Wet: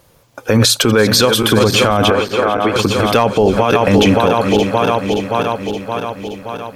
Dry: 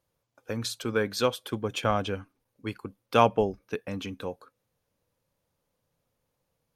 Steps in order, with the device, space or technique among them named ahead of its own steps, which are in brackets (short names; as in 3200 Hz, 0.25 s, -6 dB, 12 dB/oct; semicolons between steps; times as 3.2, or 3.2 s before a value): regenerating reverse delay 0.286 s, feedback 77%, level -11.5 dB; loud club master (compressor 2.5:1, threshold -27 dBFS, peak gain reduction 9.5 dB; hard clip -16.5 dBFS, distortion -28 dB; maximiser +28.5 dB); 2.1–2.76 three-band isolator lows -12 dB, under 270 Hz, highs -13 dB, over 2700 Hz; gain -1 dB